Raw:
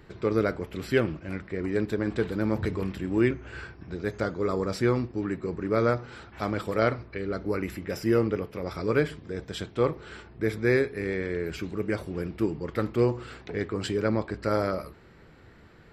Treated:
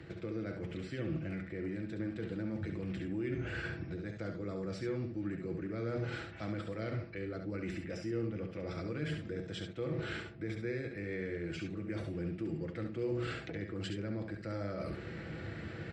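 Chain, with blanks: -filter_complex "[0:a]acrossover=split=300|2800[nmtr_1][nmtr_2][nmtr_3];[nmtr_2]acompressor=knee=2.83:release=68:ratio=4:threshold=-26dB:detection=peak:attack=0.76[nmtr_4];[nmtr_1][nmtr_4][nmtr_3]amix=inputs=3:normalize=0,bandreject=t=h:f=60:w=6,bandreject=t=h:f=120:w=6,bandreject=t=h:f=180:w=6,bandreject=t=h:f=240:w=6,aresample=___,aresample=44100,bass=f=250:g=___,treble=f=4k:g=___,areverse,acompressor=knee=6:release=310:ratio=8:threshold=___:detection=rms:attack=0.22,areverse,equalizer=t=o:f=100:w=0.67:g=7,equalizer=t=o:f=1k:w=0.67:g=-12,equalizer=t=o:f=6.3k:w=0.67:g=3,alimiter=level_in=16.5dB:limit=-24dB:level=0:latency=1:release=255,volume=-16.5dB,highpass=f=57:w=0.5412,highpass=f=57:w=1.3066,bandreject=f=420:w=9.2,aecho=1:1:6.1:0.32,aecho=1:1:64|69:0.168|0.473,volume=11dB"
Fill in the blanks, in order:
22050, -3, -11, -38dB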